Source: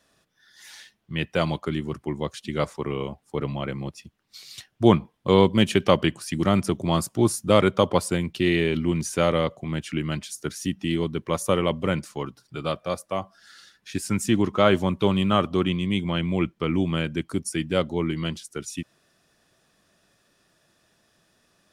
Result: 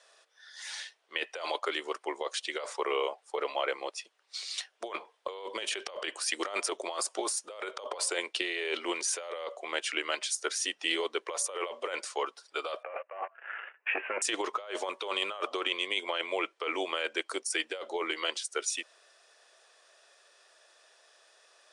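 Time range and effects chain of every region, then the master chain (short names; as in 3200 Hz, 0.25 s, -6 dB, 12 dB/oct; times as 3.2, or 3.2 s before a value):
12.83–14.22 sample leveller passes 3 + steep low-pass 2800 Hz 96 dB/oct
whole clip: steep high-pass 450 Hz 36 dB/oct; negative-ratio compressor -33 dBFS, ratio -1; elliptic low-pass 9400 Hz, stop band 50 dB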